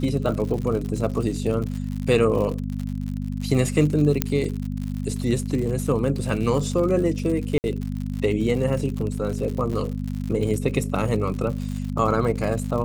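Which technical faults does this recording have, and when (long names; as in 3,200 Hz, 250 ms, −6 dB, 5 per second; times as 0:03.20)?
surface crackle 87 per second −29 dBFS
mains hum 50 Hz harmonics 5 −28 dBFS
0:04.22: click −4 dBFS
0:07.58–0:07.64: drop-out 59 ms
0:09.73–0:09.74: drop-out 6.3 ms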